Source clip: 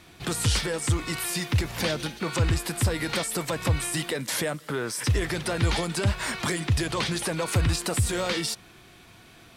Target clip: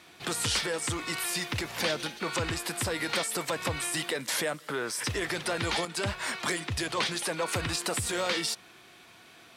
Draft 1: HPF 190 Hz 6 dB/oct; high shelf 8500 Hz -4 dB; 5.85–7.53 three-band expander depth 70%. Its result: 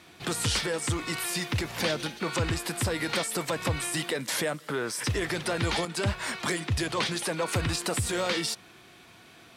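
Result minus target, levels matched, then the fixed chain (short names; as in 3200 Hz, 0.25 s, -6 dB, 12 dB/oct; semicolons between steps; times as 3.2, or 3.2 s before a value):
250 Hz band +2.5 dB
HPF 430 Hz 6 dB/oct; high shelf 8500 Hz -4 dB; 5.85–7.53 three-band expander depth 70%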